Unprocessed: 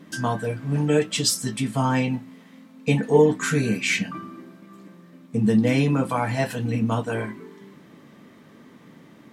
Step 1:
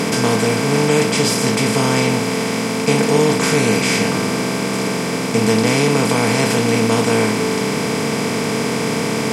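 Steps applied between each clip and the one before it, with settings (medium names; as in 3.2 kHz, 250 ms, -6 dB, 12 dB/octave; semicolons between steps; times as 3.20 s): spectral levelling over time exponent 0.2; trim -2.5 dB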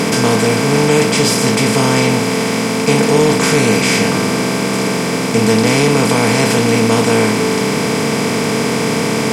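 waveshaping leveller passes 1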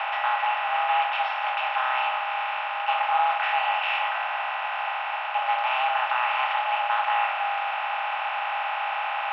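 mistuned SSB +370 Hz 390–2700 Hz; trim -8.5 dB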